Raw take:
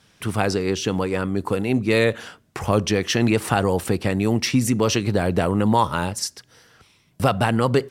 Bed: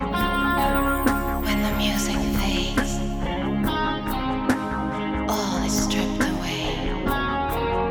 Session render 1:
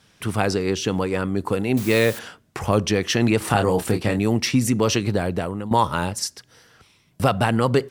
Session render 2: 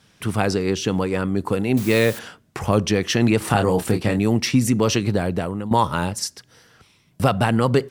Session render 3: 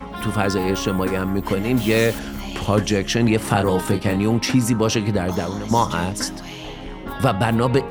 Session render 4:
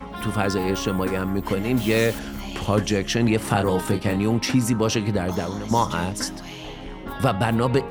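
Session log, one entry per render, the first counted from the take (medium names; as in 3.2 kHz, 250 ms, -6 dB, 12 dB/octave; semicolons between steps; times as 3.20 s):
1.77–2.19 s: word length cut 6-bit, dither triangular; 3.38–4.19 s: doubling 28 ms -6.5 dB; 5.04–5.71 s: fade out, to -13.5 dB
peaking EQ 170 Hz +2.5 dB 1.5 oct
add bed -7.5 dB
trim -2.5 dB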